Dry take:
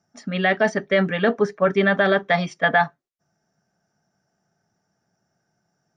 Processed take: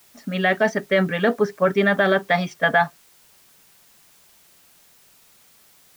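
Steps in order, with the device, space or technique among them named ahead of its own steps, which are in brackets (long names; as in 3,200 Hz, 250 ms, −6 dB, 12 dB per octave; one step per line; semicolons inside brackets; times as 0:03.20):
plain cassette with noise reduction switched in (one half of a high-frequency compander decoder only; tape wow and flutter 29 cents; white noise bed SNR 31 dB)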